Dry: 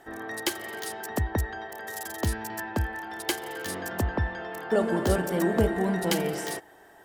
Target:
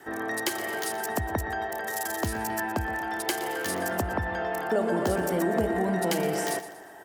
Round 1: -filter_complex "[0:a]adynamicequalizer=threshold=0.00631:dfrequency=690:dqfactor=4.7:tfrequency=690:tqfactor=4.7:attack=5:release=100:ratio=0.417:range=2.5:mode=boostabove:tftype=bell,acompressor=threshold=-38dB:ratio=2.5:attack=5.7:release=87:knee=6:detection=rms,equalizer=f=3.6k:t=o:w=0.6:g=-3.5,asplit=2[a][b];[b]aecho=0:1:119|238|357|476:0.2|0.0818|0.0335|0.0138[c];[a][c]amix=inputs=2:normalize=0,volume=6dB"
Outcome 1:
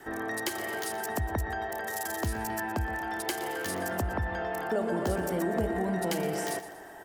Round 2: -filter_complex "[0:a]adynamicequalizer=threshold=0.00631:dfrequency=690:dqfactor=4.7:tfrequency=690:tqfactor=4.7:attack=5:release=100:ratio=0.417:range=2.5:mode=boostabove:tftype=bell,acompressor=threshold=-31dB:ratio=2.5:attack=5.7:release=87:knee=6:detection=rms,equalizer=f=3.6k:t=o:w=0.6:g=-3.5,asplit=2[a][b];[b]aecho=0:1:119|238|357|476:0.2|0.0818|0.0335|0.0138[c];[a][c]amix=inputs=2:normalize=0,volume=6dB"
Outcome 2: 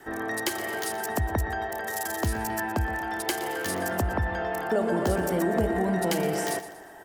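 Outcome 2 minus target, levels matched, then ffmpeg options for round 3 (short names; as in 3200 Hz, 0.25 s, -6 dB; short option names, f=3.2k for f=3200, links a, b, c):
125 Hz band +3.0 dB
-filter_complex "[0:a]adynamicequalizer=threshold=0.00631:dfrequency=690:dqfactor=4.7:tfrequency=690:tqfactor=4.7:attack=5:release=100:ratio=0.417:range=2.5:mode=boostabove:tftype=bell,acompressor=threshold=-31dB:ratio=2.5:attack=5.7:release=87:knee=6:detection=rms,highpass=f=120:p=1,equalizer=f=3.6k:t=o:w=0.6:g=-3.5,asplit=2[a][b];[b]aecho=0:1:119|238|357|476:0.2|0.0818|0.0335|0.0138[c];[a][c]amix=inputs=2:normalize=0,volume=6dB"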